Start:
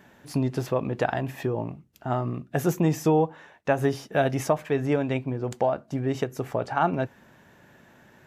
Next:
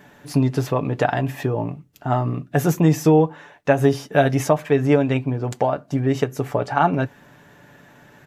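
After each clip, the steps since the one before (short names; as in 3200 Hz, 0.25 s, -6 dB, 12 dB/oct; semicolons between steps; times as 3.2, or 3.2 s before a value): comb 6.9 ms, depth 42%; gain +5 dB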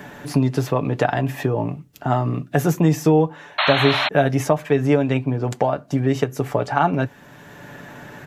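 painted sound noise, 3.58–4.09, 560–4300 Hz -19 dBFS; three-band squash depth 40%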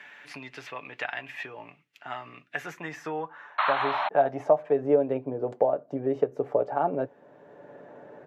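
band-pass sweep 2300 Hz -> 510 Hz, 2.46–4.91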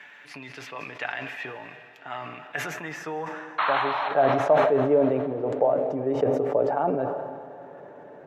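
reverb RT60 4.1 s, pre-delay 0.115 s, DRR 11.5 dB; sustainer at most 36 dB/s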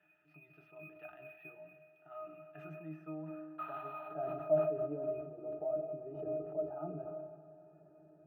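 octave resonator D#, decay 0.18 s; de-hum 123.6 Hz, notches 3; decimation joined by straight lines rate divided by 3×; gain -3 dB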